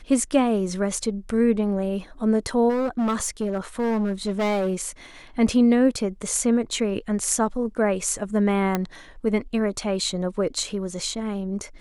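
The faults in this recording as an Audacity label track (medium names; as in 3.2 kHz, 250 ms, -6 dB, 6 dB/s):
2.690000	4.740000	clipped -20 dBFS
8.750000	8.750000	pop -9 dBFS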